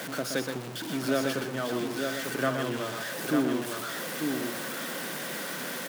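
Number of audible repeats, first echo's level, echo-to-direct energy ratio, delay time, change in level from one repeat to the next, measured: 3, -7.0 dB, -2.5 dB, 122 ms, no regular repeats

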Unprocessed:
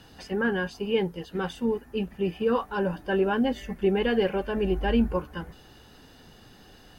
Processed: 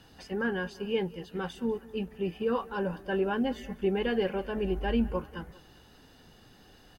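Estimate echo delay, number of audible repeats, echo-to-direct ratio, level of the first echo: 196 ms, 2, -20.0 dB, -21.0 dB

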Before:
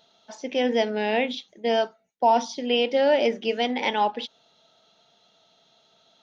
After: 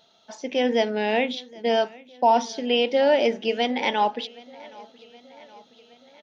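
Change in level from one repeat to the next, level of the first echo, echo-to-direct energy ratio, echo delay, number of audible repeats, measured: -4.5 dB, -23.0 dB, -21.0 dB, 770 ms, 3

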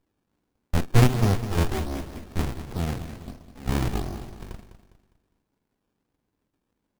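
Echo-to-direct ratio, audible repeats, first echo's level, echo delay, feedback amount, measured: -11.0 dB, 3, -11.5 dB, 203 ms, 39%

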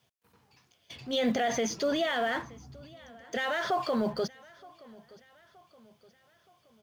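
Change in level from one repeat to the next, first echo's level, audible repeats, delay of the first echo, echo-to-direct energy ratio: -6.5 dB, -23.0 dB, 2, 922 ms, -22.0 dB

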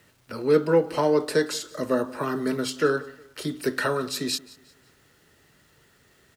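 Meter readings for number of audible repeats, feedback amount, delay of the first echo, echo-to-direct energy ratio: 2, 37%, 179 ms, -21.0 dB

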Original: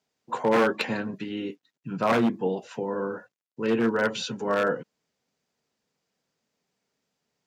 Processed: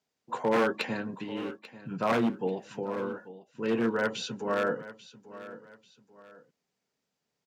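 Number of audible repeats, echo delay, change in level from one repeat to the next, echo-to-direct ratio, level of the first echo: 2, 840 ms, -9.0 dB, -15.5 dB, -16.0 dB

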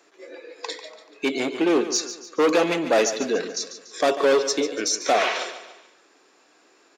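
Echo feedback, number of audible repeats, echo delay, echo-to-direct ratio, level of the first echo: 44%, 4, 144 ms, -11.0 dB, -12.0 dB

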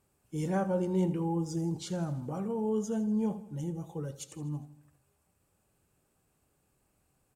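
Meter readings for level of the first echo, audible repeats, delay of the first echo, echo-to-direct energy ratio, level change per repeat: -16.0 dB, 4, 81 ms, -14.5 dB, -5.0 dB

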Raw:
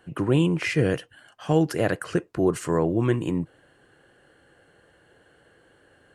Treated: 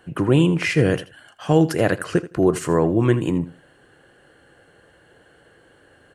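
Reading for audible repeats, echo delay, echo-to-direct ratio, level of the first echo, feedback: 2, 81 ms, -16.0 dB, -16.0 dB, 17%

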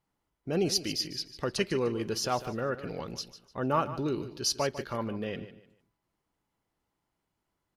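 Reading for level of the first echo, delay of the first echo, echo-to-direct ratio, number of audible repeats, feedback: -13.5 dB, 149 ms, -13.0 dB, 3, 29%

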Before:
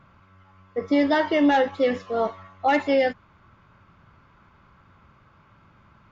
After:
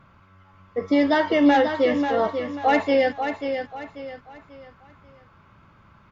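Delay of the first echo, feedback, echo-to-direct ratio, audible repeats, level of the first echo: 539 ms, 35%, -7.0 dB, 4, -7.5 dB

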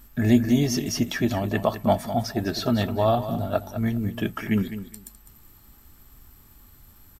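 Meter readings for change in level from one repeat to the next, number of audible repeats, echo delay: -14.5 dB, 2, 205 ms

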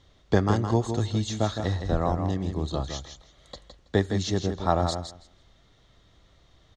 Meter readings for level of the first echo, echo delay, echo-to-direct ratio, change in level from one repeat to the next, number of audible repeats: -7.5 dB, 163 ms, -7.5 dB, -16.0 dB, 2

